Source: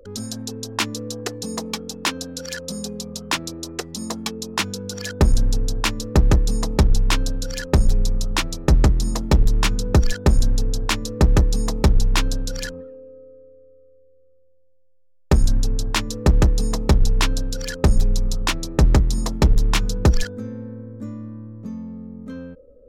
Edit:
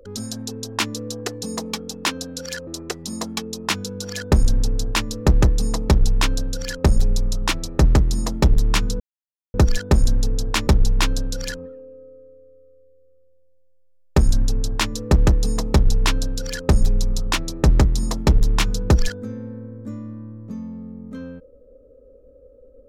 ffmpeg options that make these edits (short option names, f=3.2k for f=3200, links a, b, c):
-filter_complex "[0:a]asplit=4[a][b][c][d];[a]atrim=end=2.672[e];[b]atrim=start=3.558:end=9.89,asetpts=PTS-STARTPTS,afade=t=out:st=6.328:d=0.004:c=hsin,apad=pad_dur=0.54[f];[c]atrim=start=9.89:end=11.022,asetpts=PTS-STARTPTS,afade=t=in:d=0.004:c=hsin[g];[d]atrim=start=11.818[h];[f][g]concat=n=2:v=0:a=1[i];[e][i]acrossfade=d=0.004:c1=hsin:c2=hsin[j];[j][h]acrossfade=d=0.004:c1=hsin:c2=hsin"